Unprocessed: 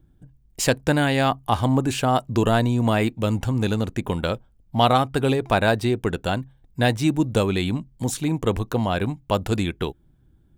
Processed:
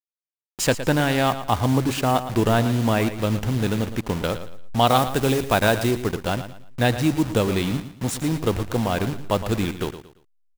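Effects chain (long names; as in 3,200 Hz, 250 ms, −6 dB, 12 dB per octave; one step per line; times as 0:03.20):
hold until the input has moved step −27.5 dBFS
0:04.87–0:05.91: high-shelf EQ 4,500 Hz +6 dB
repeating echo 114 ms, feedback 31%, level −12 dB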